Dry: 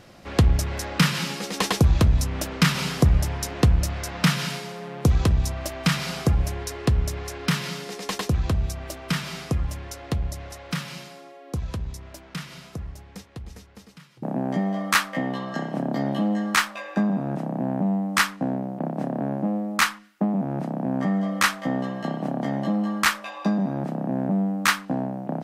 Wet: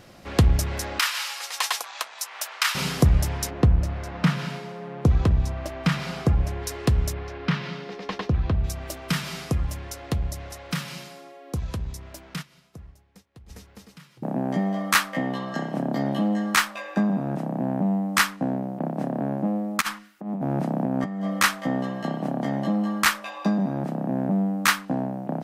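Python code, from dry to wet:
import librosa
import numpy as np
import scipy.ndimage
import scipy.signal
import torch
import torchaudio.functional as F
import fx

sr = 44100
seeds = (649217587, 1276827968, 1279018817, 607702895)

y = fx.highpass(x, sr, hz=810.0, slope=24, at=(0.99, 2.75))
y = fx.lowpass(y, sr, hz=fx.line((3.49, 1100.0), (6.62, 2500.0)), slope=6, at=(3.49, 6.62), fade=0.02)
y = fx.air_absorb(y, sr, metres=250.0, at=(7.12, 8.63), fade=0.02)
y = fx.upward_expand(y, sr, threshold_db=-52.0, expansion=1.5, at=(12.41, 13.48), fade=0.02)
y = fx.over_compress(y, sr, threshold_db=-26.0, ratio=-0.5, at=(19.8, 21.24), fade=0.02)
y = fx.high_shelf(y, sr, hz=12000.0, db=6.0)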